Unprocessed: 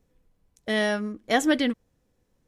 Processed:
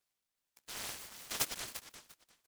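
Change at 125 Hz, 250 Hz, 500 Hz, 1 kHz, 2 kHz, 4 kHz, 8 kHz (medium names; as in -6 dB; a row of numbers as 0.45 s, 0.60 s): no reading, -32.5 dB, -27.0 dB, -18.5 dB, -18.5 dB, -10.5 dB, -1.0 dB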